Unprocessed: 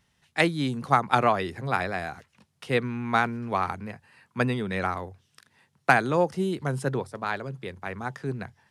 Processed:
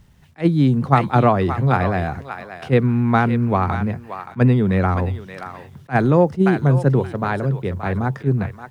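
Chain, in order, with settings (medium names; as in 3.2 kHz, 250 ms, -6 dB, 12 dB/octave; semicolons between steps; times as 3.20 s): 4.88–6.06 s: companding laws mixed up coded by mu; tilt EQ -3.5 dB/octave; in parallel at +1 dB: compression, threshold -29 dBFS, peak gain reduction 16 dB; on the sum: bit crusher 11-bit; on a send: thinning echo 575 ms, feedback 19%, high-pass 1 kHz, level -7 dB; on the sum: attacks held to a fixed rise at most 400 dB/s; trim +2.5 dB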